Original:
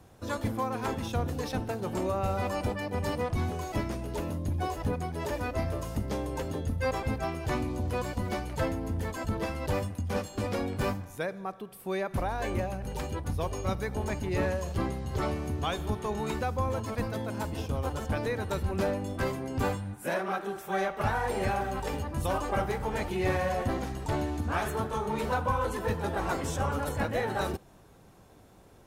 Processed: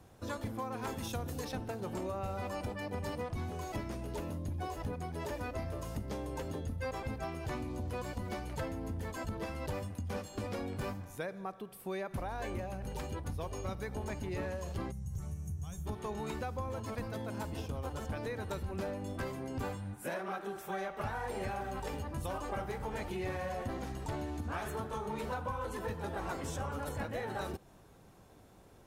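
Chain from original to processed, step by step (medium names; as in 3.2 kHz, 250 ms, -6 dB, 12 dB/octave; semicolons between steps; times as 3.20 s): 0.87–1.45 s: treble shelf 5.7 kHz +11 dB; 14.91–15.86 s: time-frequency box 210–5400 Hz -20 dB; compression 3:1, threshold -33 dBFS, peak gain reduction 7.5 dB; trim -3 dB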